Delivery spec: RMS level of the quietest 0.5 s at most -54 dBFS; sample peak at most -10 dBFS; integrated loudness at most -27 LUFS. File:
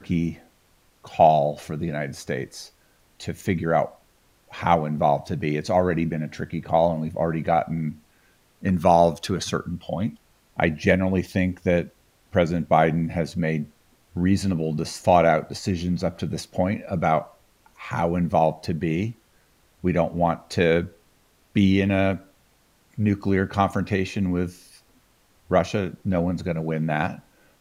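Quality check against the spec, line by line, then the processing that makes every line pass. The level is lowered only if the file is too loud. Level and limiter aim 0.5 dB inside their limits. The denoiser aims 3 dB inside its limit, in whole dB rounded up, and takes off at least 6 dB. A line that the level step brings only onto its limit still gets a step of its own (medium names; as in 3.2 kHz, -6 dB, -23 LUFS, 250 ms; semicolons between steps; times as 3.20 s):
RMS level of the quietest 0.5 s -61 dBFS: pass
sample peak -3.0 dBFS: fail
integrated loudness -23.5 LUFS: fail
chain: trim -4 dB; peak limiter -10.5 dBFS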